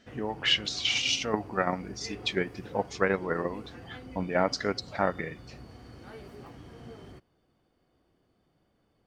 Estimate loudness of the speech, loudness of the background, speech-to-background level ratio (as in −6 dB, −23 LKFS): −29.5 LKFS, −47.0 LKFS, 17.5 dB